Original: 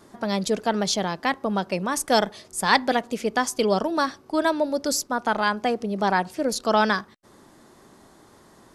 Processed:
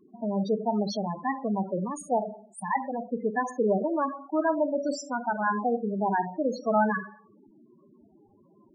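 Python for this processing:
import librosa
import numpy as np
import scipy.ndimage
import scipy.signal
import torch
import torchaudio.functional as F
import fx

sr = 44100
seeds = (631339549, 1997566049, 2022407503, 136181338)

y = fx.level_steps(x, sr, step_db=9, at=(1.88, 3.0))
y = fx.rev_schroeder(y, sr, rt60_s=0.6, comb_ms=30, drr_db=7.5)
y = fx.spec_topn(y, sr, count=8)
y = y * 10.0 ** (-2.5 / 20.0)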